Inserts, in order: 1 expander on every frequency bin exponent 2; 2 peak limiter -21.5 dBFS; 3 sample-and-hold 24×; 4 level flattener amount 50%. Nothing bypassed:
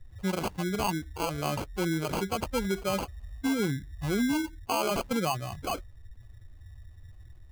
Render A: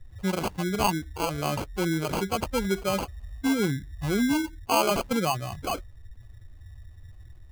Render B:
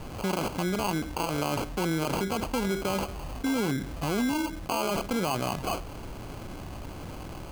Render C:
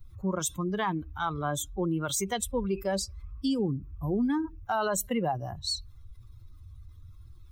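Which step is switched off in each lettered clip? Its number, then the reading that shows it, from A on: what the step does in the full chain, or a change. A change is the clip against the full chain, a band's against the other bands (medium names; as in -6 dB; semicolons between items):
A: 2, crest factor change +2.5 dB; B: 1, momentary loudness spread change +6 LU; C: 3, crest factor change +2.0 dB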